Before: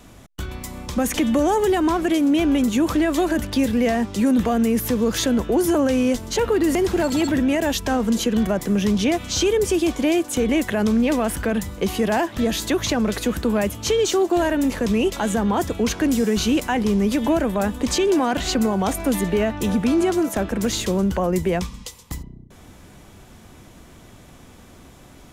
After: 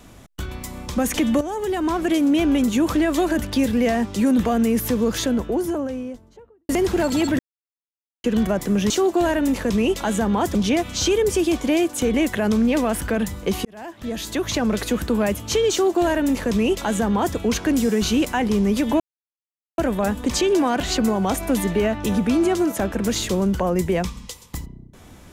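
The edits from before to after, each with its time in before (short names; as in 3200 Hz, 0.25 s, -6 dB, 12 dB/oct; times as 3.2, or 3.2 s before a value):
1.41–2.13 fade in, from -12 dB
4.85–6.69 studio fade out
7.39–8.24 mute
12–13.03 fade in
14.06–15.71 copy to 8.9
17.35 insert silence 0.78 s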